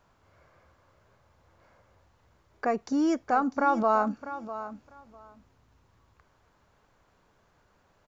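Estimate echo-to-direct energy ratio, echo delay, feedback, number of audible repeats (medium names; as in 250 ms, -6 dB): -13.0 dB, 649 ms, 17%, 2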